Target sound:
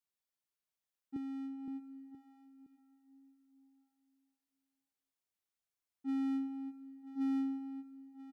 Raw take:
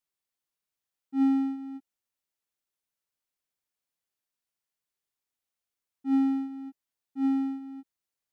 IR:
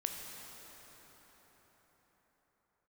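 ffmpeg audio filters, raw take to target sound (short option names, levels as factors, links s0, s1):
-filter_complex "[0:a]asplit=2[s0][s1];[1:a]atrim=start_sample=2205[s2];[s1][s2]afir=irnorm=-1:irlink=0,volume=0.188[s3];[s0][s3]amix=inputs=2:normalize=0,alimiter=limit=0.0841:level=0:latency=1:release=29,aeval=exprs='0.0841*(cos(1*acos(clip(val(0)/0.0841,-1,1)))-cos(1*PI/2))+0.00266*(cos(5*acos(clip(val(0)/0.0841,-1,1)))-cos(5*PI/2))':c=same,asettb=1/sr,asplit=3[s4][s5][s6];[s4]atrim=end=1.164[s7];[s5]atrim=start=1.16:end=1.68,asetpts=PTS-STARTPTS,afade=t=in:d=0.004:c=qsin,afade=t=out:st=0.516:d=0.004:c=qsin,acrossover=split=120[s8][s9];[s9]acompressor=threshold=0.0178:ratio=4[s10];[s8][s10]amix=inputs=2:normalize=0[s11];[s6]atrim=start=1.676[s12];[s7][s11]acrossfade=d=0.004:c1=hsin:c2=qsin[s13];[s13][s12]acrossfade=d=0.004:c1=qsin:c2=hsin,aecho=1:1:985:0.158,volume=0.422"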